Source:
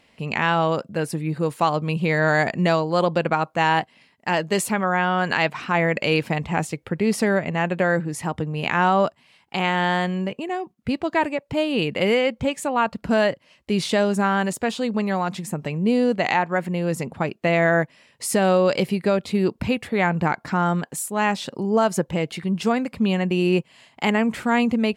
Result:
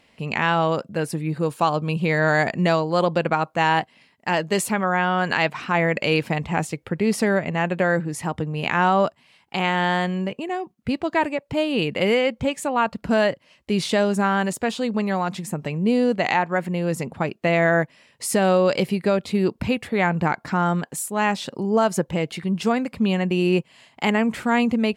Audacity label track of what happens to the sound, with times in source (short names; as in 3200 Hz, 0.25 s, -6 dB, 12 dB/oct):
1.460000	2.000000	notch 2000 Hz, Q 5.9